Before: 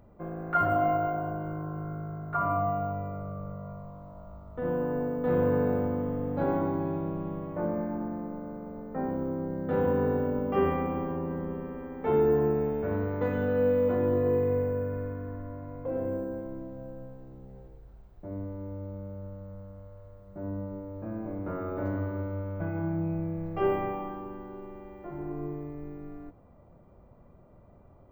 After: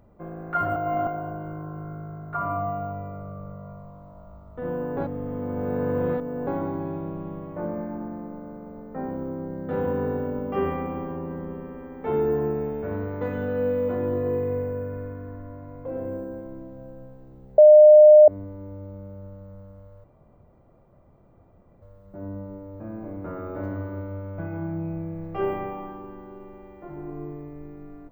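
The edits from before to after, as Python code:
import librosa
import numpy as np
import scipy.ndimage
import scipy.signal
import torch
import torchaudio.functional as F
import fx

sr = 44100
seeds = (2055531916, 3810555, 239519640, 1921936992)

y = fx.edit(x, sr, fx.reverse_span(start_s=0.76, length_s=0.31),
    fx.reverse_span(start_s=4.97, length_s=1.5),
    fx.bleep(start_s=17.58, length_s=0.7, hz=607.0, db=-7.0),
    fx.insert_room_tone(at_s=20.04, length_s=1.78), tone=tone)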